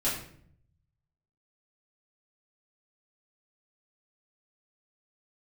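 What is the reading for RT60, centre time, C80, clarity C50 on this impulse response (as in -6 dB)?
0.60 s, 42 ms, 8.0 dB, 4.5 dB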